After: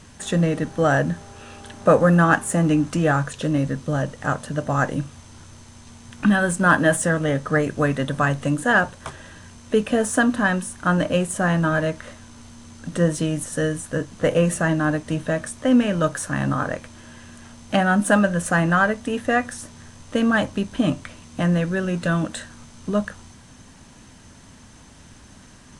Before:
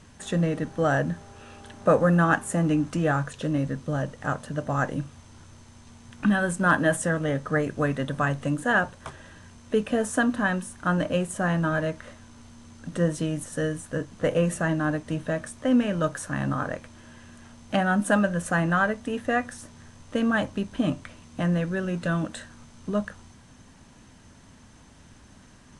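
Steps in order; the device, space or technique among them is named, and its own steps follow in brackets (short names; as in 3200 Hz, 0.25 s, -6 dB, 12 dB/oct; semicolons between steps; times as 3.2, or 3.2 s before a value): exciter from parts (in parallel at -4.5 dB: HPF 4800 Hz 6 dB/oct + soft clip -34 dBFS, distortion -10 dB); on the sum: gain +4.5 dB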